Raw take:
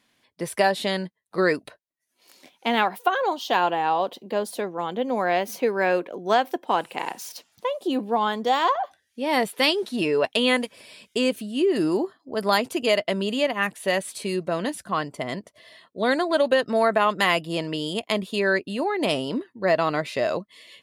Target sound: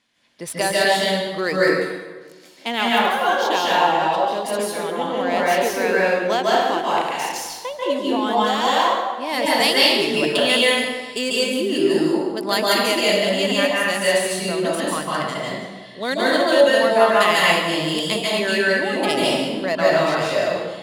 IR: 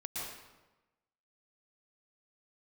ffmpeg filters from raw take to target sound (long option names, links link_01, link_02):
-filter_complex "[0:a]crystalizer=i=3.5:c=0,adynamicsmooth=sensitivity=3:basefreq=4800[link_01];[1:a]atrim=start_sample=2205,asetrate=34839,aresample=44100[link_02];[link_01][link_02]afir=irnorm=-1:irlink=0"